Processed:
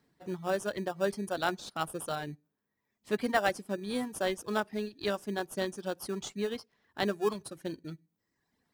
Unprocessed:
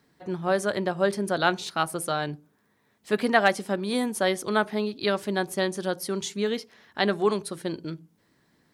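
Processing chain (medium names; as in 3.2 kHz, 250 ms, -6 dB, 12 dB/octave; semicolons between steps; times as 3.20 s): reverb removal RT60 1.2 s; in parallel at -9 dB: sample-and-hold 21×; on the sum: trim -8 dB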